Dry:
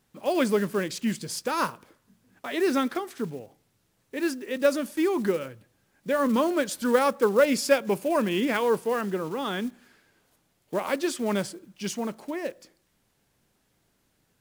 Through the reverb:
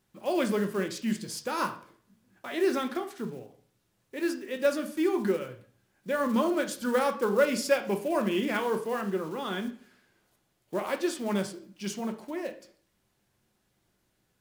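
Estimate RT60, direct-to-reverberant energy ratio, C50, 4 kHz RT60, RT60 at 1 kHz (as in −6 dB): 0.45 s, 5.5 dB, 12.0 dB, 0.40 s, 0.45 s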